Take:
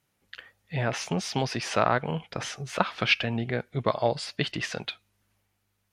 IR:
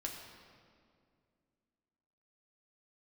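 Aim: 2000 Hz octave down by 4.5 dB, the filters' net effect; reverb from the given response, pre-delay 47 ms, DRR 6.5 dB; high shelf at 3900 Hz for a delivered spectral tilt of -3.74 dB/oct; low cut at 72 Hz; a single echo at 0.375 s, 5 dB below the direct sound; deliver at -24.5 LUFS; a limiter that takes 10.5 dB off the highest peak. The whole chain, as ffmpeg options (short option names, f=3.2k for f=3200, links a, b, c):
-filter_complex "[0:a]highpass=72,equalizer=f=2k:t=o:g=-9,highshelf=f=3.9k:g=8.5,alimiter=limit=-15dB:level=0:latency=1,aecho=1:1:375:0.562,asplit=2[a][b];[1:a]atrim=start_sample=2205,adelay=47[c];[b][c]afir=irnorm=-1:irlink=0,volume=-6dB[d];[a][d]amix=inputs=2:normalize=0,volume=4dB"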